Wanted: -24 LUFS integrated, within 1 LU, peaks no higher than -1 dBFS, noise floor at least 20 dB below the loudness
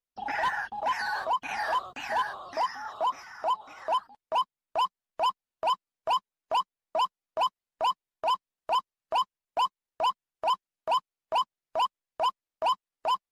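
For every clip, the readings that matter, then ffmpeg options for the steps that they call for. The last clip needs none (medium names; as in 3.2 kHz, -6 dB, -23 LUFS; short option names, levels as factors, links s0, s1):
loudness -31.0 LUFS; peak level -21.0 dBFS; loudness target -24.0 LUFS
-> -af "volume=2.24"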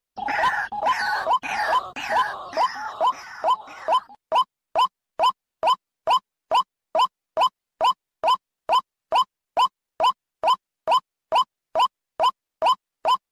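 loudness -23.5 LUFS; peak level -14.0 dBFS; noise floor -86 dBFS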